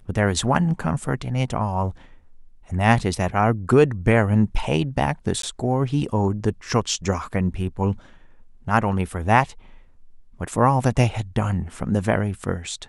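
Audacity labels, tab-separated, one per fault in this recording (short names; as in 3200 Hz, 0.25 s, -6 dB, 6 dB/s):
5.420000	5.430000	gap 13 ms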